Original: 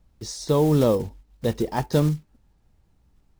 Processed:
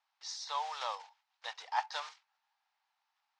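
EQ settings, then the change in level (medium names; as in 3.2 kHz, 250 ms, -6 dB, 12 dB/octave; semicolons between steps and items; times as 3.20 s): elliptic high-pass 810 Hz, stop band 60 dB; low-pass 5.5 kHz 24 dB/octave; -3.0 dB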